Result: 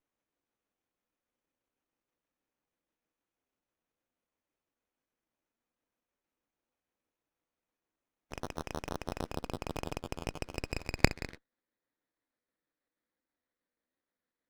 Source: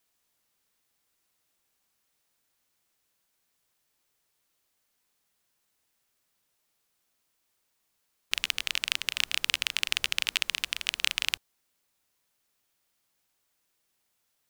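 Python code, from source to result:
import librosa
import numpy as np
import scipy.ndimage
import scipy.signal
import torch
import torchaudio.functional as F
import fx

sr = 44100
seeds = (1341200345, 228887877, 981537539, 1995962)

p1 = fx.pitch_trill(x, sr, semitones=8.5, every_ms=80)
p2 = np.clip(10.0 ** (7.5 / 20.0) * p1, -1.0, 1.0) / 10.0 ** (7.5 / 20.0)
p3 = p1 + (p2 * 10.0 ** (-6.0 / 20.0))
p4 = fx.notch(p3, sr, hz=2700.0, q=20.0)
p5 = fx.small_body(p4, sr, hz=(290.0, 500.0, 2500.0), ring_ms=30, db=9)
p6 = fx.level_steps(p5, sr, step_db=22)
p7 = scipy.signal.sosfilt(scipy.signal.butter(6, 190.0, 'highpass', fs=sr, output='sos'), p6)
p8 = fx.low_shelf(p7, sr, hz=430.0, db=10.0)
p9 = fx.filter_sweep_lowpass(p8, sr, from_hz=5900.0, to_hz=1900.0, start_s=8.93, end_s=11.46, q=4.1)
p10 = fx.dynamic_eq(p9, sr, hz=1500.0, q=1.4, threshold_db=-55.0, ratio=4.0, max_db=8)
p11 = fx.running_max(p10, sr, window=9)
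y = p11 * 10.0 ** (-3.0 / 20.0)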